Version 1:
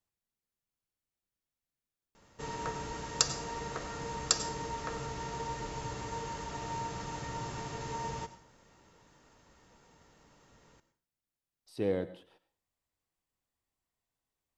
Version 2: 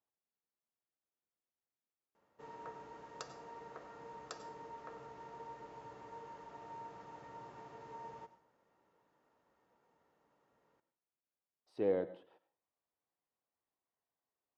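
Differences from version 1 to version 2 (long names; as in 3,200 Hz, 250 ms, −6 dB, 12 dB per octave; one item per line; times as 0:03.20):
background −9.5 dB
master: add resonant band-pass 670 Hz, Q 0.67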